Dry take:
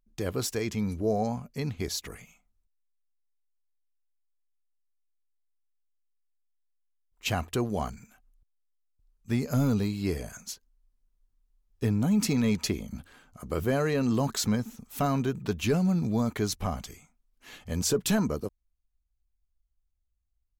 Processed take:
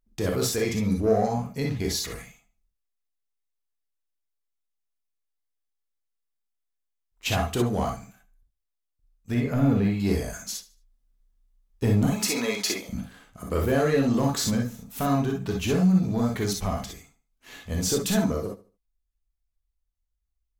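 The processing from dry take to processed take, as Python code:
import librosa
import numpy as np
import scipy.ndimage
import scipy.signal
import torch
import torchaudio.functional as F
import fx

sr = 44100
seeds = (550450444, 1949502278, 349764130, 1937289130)

y = fx.high_shelf_res(x, sr, hz=3500.0, db=-11.5, q=1.5, at=(9.34, 10.0))
y = fx.highpass(y, sr, hz=490.0, slope=12, at=(12.07, 12.88))
y = fx.leveller(y, sr, passes=1)
y = fx.rider(y, sr, range_db=4, speed_s=2.0)
y = fx.echo_feedback(y, sr, ms=75, feedback_pct=30, wet_db=-17.5)
y = fx.rev_gated(y, sr, seeds[0], gate_ms=80, shape='rising', drr_db=0.5)
y = y * 10.0 ** (-2.0 / 20.0)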